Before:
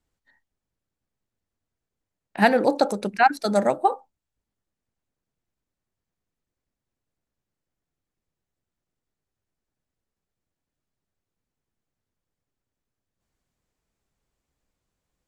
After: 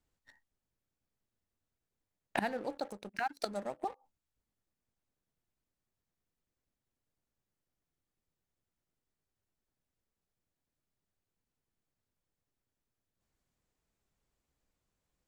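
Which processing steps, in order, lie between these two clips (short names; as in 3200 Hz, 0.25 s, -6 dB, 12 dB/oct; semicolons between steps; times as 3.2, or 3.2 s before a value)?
flipped gate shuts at -20 dBFS, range -26 dB; sample leveller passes 2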